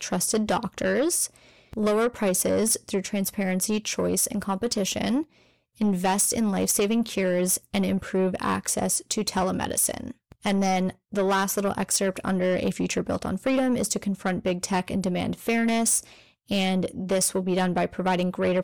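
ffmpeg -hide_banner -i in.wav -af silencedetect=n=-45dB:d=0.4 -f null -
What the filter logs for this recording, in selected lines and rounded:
silence_start: 5.24
silence_end: 5.79 | silence_duration: 0.55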